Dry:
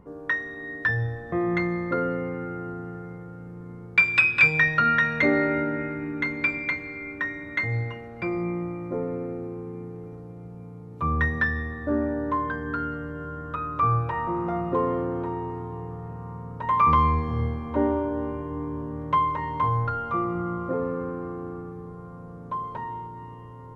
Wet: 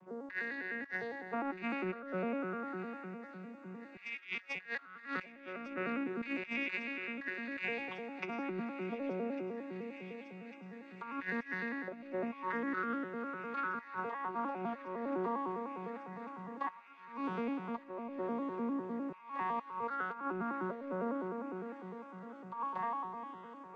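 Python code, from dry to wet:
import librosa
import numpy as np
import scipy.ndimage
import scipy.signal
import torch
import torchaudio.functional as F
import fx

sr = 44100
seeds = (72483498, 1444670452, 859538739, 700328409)

p1 = fx.vocoder_arp(x, sr, chord='major triad', root=54, every_ms=101)
p2 = fx.highpass(p1, sr, hz=750.0, slope=6)
p3 = fx.high_shelf(p2, sr, hz=4900.0, db=11.5)
p4 = fx.over_compress(p3, sr, threshold_db=-36.0, ratio=-0.5)
p5 = p4 + fx.echo_wet_highpass(p4, sr, ms=1150, feedback_pct=83, hz=2400.0, wet_db=-13, dry=0)
y = p5 * 10.0 ** (-3.0 / 20.0)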